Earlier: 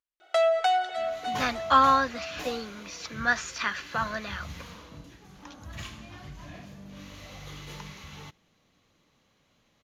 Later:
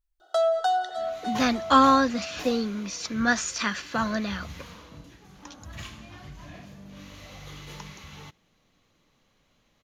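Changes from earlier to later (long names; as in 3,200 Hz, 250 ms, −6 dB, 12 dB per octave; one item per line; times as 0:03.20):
speech: remove resonant band-pass 1,600 Hz, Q 0.58
first sound: add Butterworth band-reject 2,300 Hz, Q 1.3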